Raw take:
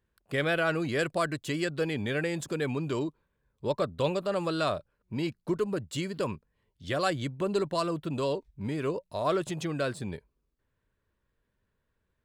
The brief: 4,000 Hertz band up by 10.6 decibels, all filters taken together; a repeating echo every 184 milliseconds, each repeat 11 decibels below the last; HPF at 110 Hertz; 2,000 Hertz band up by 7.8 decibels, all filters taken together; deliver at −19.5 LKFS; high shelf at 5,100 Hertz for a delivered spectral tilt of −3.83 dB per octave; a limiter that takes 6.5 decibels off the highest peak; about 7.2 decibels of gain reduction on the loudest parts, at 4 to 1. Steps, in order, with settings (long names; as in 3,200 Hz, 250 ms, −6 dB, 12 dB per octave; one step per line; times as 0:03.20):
high-pass filter 110 Hz
parametric band 2,000 Hz +7.5 dB
parametric band 4,000 Hz +7 dB
high-shelf EQ 5,100 Hz +8.5 dB
downward compressor 4 to 1, threshold −27 dBFS
brickwall limiter −19.5 dBFS
repeating echo 184 ms, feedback 28%, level −11 dB
level +13 dB